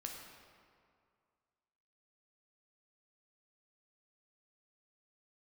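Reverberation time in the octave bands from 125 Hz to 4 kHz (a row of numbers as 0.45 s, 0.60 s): 2.2 s, 2.1 s, 2.2 s, 2.2 s, 1.8 s, 1.4 s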